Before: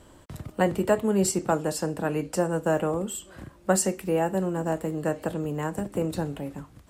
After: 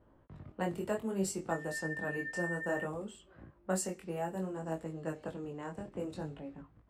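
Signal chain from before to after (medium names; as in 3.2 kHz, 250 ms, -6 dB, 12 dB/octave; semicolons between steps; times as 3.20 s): 1.50–2.83 s: whistle 1.8 kHz -27 dBFS; level-controlled noise filter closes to 1.3 kHz, open at -21.5 dBFS; chorus 0.61 Hz, delay 18 ms, depth 5.4 ms; trim -8.5 dB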